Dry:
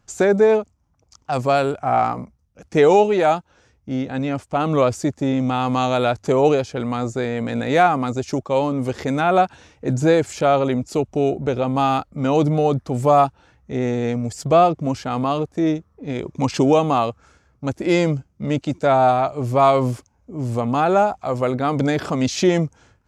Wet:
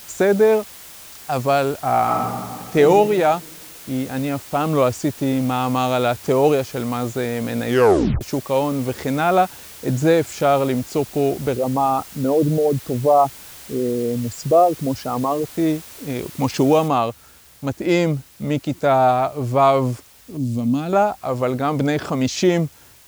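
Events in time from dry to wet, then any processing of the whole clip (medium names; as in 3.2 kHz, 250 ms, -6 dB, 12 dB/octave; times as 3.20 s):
2.02–2.77 s: reverb throw, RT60 1.7 s, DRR -2.5 dB
7.66 s: tape stop 0.55 s
11.53–15.44 s: resonances exaggerated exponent 2
16.88 s: noise floor step -40 dB -49 dB
20.37–20.93 s: FFT filter 150 Hz 0 dB, 270 Hz +6 dB, 400 Hz -12 dB, 590 Hz -10 dB, 850 Hz -18 dB, 1.9 kHz -11 dB, 3.9 kHz -1 dB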